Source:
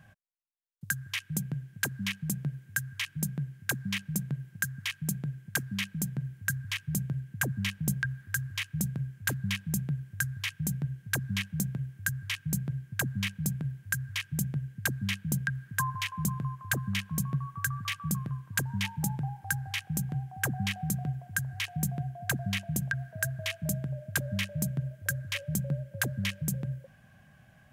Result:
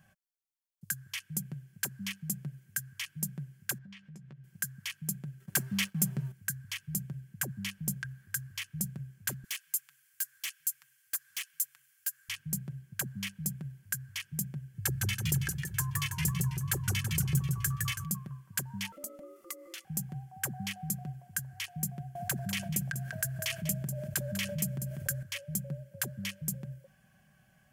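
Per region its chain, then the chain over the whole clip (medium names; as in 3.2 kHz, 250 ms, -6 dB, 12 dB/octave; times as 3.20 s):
3.78–4.44 s: low-pass 3.6 kHz + compression, threshold -42 dBFS + doubling 14 ms -9 dB
5.40–6.32 s: peaking EQ 73 Hz -6.5 dB 0.41 oct + waveshaping leveller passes 2
9.44–12.29 s: inverse Chebyshev high-pass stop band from 580 Hz + hard clipper -30.5 dBFS + treble shelf 4.9 kHz +8 dB
14.74–18.05 s: peaking EQ 65 Hz +12.5 dB 2.9 oct + comb 2.3 ms, depth 81% + modulated delay 164 ms, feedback 52%, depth 172 cents, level -4 dB
18.92–19.85 s: treble shelf 2.6 kHz +8.5 dB + compression 2:1, threshold -40 dBFS + ring modulator 430 Hz
22.15–25.23 s: delay 195 ms -14 dB + level flattener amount 70%
whole clip: treble shelf 4.1 kHz +9 dB; band-stop 3.8 kHz, Q 12; comb 5.3 ms, depth 42%; trim -8 dB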